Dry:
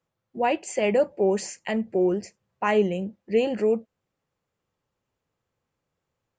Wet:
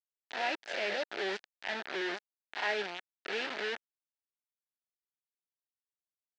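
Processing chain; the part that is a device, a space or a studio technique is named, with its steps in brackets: reverse spectral sustain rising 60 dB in 0.60 s; 2.01–3.51 s: high-pass 170 Hz 12 dB/octave; hand-held game console (bit crusher 4-bit; cabinet simulation 490–4500 Hz, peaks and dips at 500 Hz -10 dB, 1.1 kHz -10 dB, 1.7 kHz +6 dB); trim -9 dB

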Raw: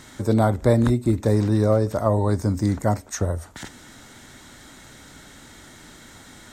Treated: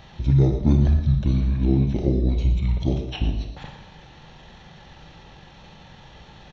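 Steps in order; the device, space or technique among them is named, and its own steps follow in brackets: monster voice (pitch shift -8.5 st; formant shift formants -5 st; bass shelf 220 Hz +3.5 dB; delay 117 ms -12.5 dB; reverberation RT60 0.80 s, pre-delay 31 ms, DRR 5 dB); trim -2.5 dB

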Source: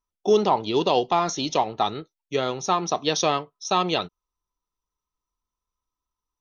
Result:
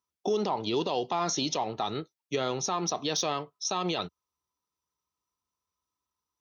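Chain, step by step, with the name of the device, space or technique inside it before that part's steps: broadcast voice chain (high-pass 73 Hz 24 dB/octave; de-esser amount 50%; compression 4:1, threshold -21 dBFS, peak gain reduction 7 dB; peaking EQ 5 kHz +3 dB 0.57 oct; peak limiter -19 dBFS, peak gain reduction 8 dB)

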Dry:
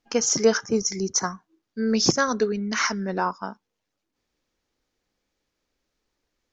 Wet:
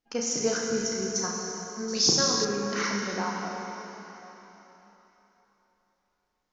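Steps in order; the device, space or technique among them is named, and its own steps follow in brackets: tunnel (flutter echo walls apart 5.9 m, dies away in 0.31 s; reverberation RT60 3.7 s, pre-delay 35 ms, DRR -0.5 dB); 1.88–2.45 s: resonant high shelf 2.9 kHz +7 dB, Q 1.5; trim -8.5 dB

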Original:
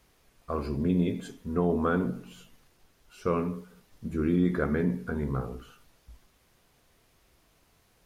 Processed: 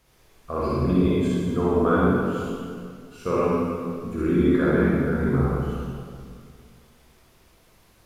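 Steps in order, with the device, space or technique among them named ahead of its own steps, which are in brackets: stairwell (reverberation RT60 2.1 s, pre-delay 38 ms, DRR -7 dB)

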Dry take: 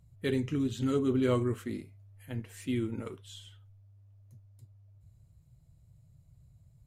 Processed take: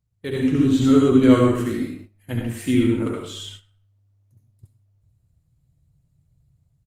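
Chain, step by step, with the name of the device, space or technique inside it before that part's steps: speakerphone in a meeting room (reverberation RT60 0.60 s, pre-delay 63 ms, DRR -0.5 dB; speakerphone echo 130 ms, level -18 dB; level rider gain up to 11 dB; gate -39 dBFS, range -15 dB; Opus 32 kbps 48 kHz)

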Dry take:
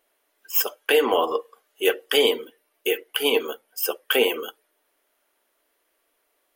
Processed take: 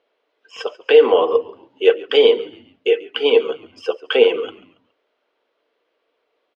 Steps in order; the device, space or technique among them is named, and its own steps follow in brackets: frequency-shifting delay pedal into a guitar cabinet (frequency-shifting echo 139 ms, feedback 41%, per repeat -65 Hz, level -19 dB; cabinet simulation 86–4200 Hz, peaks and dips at 96 Hz +9 dB, 150 Hz -5 dB, 470 Hz +9 dB, 1.8 kHz -4 dB); trim +1.5 dB

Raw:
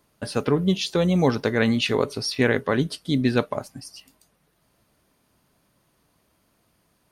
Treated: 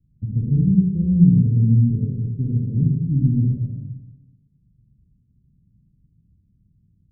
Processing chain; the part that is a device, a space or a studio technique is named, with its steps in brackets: club heard from the street (peak limiter -11.5 dBFS, peak gain reduction 5 dB; low-pass 150 Hz 24 dB/octave; reverberation RT60 1.2 s, pre-delay 38 ms, DRR -4 dB); resonant low shelf 700 Hz +10.5 dB, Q 1.5

